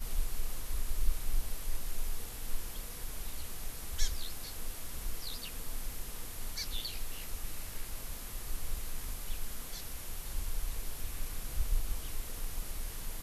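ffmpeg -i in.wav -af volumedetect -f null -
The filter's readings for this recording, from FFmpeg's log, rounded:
mean_volume: -32.9 dB
max_volume: -14.7 dB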